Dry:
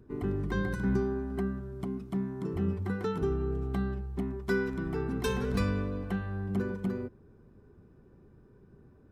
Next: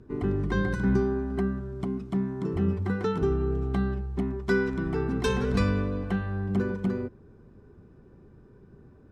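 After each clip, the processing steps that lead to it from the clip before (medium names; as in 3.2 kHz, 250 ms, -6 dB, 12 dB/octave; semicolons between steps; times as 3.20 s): low-pass 8 kHz 12 dB/octave; trim +4.5 dB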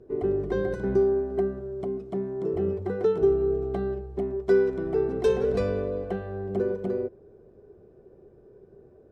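high-order bell 510 Hz +14 dB 1.3 oct; trim -7 dB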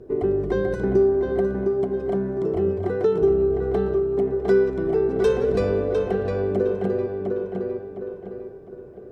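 tape echo 707 ms, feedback 38%, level -5 dB, low-pass 4 kHz; in parallel at +3 dB: compression, threshold -31 dBFS, peak gain reduction 13.5 dB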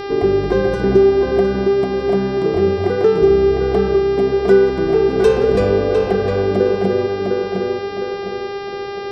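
mains buzz 400 Hz, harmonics 14, -33 dBFS -7 dB/octave; trim +6.5 dB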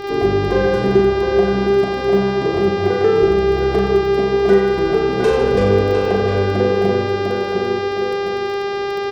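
self-modulated delay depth 0.075 ms; reverse bouncing-ball echo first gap 40 ms, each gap 1.25×, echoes 5; crackle 18 per s -26 dBFS; trim -2 dB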